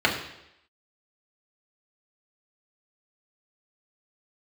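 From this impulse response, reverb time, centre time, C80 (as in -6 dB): 0.80 s, 28 ms, 9.5 dB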